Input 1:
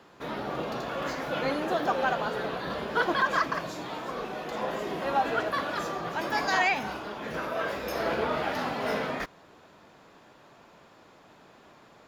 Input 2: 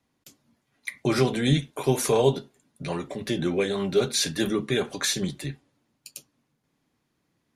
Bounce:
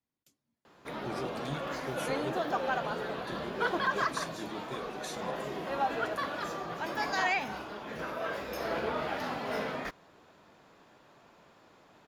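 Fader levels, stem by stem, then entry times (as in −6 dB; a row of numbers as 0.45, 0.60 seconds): −4.5, −17.5 decibels; 0.65, 0.00 seconds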